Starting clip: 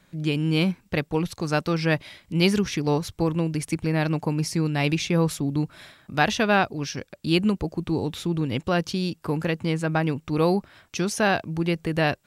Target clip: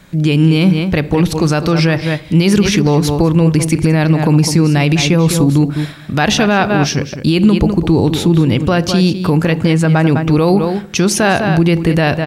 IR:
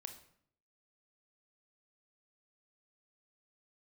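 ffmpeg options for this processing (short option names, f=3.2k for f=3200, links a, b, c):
-filter_complex "[0:a]asplit=2[a][b];[b]adelay=204.1,volume=-11dB,highshelf=f=4k:g=-4.59[c];[a][c]amix=inputs=2:normalize=0,asplit=2[d][e];[1:a]atrim=start_sample=2205,lowshelf=f=450:g=12[f];[e][f]afir=irnorm=-1:irlink=0,volume=-9dB[g];[d][g]amix=inputs=2:normalize=0,alimiter=level_in=13.5dB:limit=-1dB:release=50:level=0:latency=1,volume=-1dB"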